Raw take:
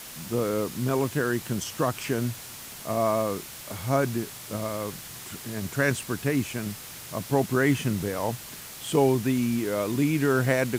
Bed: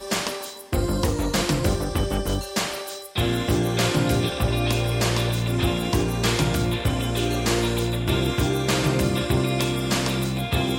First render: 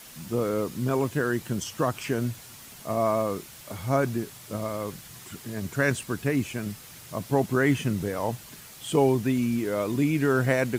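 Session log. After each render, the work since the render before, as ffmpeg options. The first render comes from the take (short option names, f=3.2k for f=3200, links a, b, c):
-af "afftdn=nr=6:nf=-42"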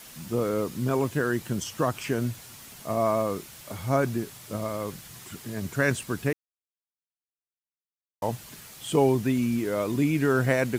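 -filter_complex "[0:a]asplit=3[a][b][c];[a]atrim=end=6.33,asetpts=PTS-STARTPTS,afade=t=out:st=6.326:d=0.004:c=hsin[d];[b]atrim=start=6.33:end=8.22,asetpts=PTS-STARTPTS,volume=0[e];[c]atrim=start=8.22,asetpts=PTS-STARTPTS,afade=t=in:d=0.004:c=hsin[f];[d][e][f]concat=n=3:v=0:a=1"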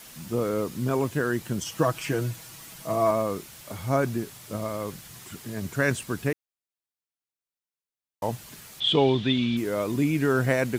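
-filter_complex "[0:a]asettb=1/sr,asplit=3[a][b][c];[a]atrim=end=1.654[d];[b]atrim=start=1.65:end=3.11,asetpts=PTS-STARTPTS,afade=t=in:d=0.004:c=qsin,afade=t=out:st=1.456:d=0.004:c=qsin,aecho=1:1:6.2:0.65,atrim=end_sample=64386[e];[c]atrim=start=3.106[f];[d][e]acrossfade=d=0.004:c1=hsin:c2=qsin[g];[g][f]acrossfade=d=0.004:c1=qsin:c2=hsin,asettb=1/sr,asplit=3[h][i][j];[h]atrim=end=8.804[k];[i]atrim=start=8.8:end=9.57,asetpts=PTS-STARTPTS,afade=t=in:d=0.004:c=qsin,afade=t=out:st=0.766:d=0.004:c=qsin,lowpass=f=3.5k:t=q:w=11[l];[j]atrim=start=9.566[m];[k][l]acrossfade=d=0.004:c1=hsin:c2=qsin[n];[n][m]acrossfade=d=0.004:c1=qsin:c2=hsin"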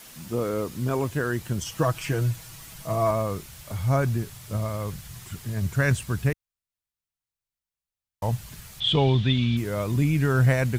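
-af "asubboost=boost=7:cutoff=110"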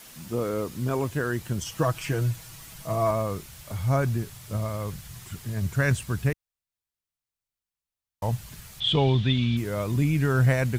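-af "volume=-1dB"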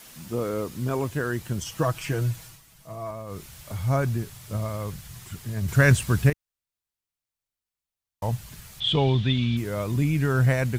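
-filter_complex "[0:a]asettb=1/sr,asplit=3[a][b][c];[a]atrim=end=5.684[d];[b]atrim=start=5.68:end=6.3,asetpts=PTS-STARTPTS,afade=t=in:d=0.004:c=qsin,afade=t=out:st=0.616:d=0.004:c=qsin,acontrast=57[e];[c]atrim=start=6.296[f];[d][e]acrossfade=d=0.004:c1=hsin:c2=qsin[g];[g][f]acrossfade=d=0.004:c1=qsin:c2=hsin,asplit=3[h][i][j];[h]atrim=end=2.62,asetpts=PTS-STARTPTS,afade=t=out:st=2.44:d=0.18:silence=0.298538[k];[i]atrim=start=2.62:end=3.26,asetpts=PTS-STARTPTS,volume=-10.5dB[l];[j]atrim=start=3.26,asetpts=PTS-STARTPTS,afade=t=in:d=0.18:silence=0.298538[m];[k][l][m]concat=n=3:v=0:a=1"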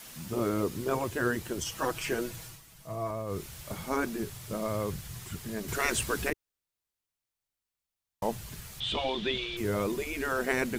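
-af "afftfilt=real='re*lt(hypot(re,im),0.251)':imag='im*lt(hypot(re,im),0.251)':win_size=1024:overlap=0.75,adynamicequalizer=threshold=0.00398:dfrequency=390:dqfactor=1.9:tfrequency=390:tqfactor=1.9:attack=5:release=100:ratio=0.375:range=3:mode=boostabove:tftype=bell"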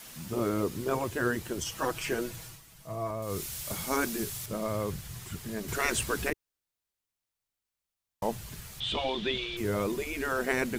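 -filter_complex "[0:a]asettb=1/sr,asplit=3[a][b][c];[a]atrim=end=3.224[d];[b]atrim=start=3.22:end=4.46,asetpts=PTS-STARTPTS,afade=t=in:d=0.004:c=qsin,afade=t=out:st=1.236:d=0.004:c=qsin,highshelf=f=3.1k:g=10.5[e];[c]atrim=start=4.456[f];[d][e]acrossfade=d=0.004:c1=hsin:c2=qsin[g];[g][f]acrossfade=d=0.004:c1=qsin:c2=hsin"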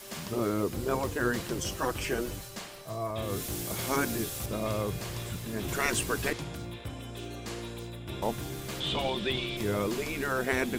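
-filter_complex "[1:a]volume=-16.5dB[a];[0:a][a]amix=inputs=2:normalize=0"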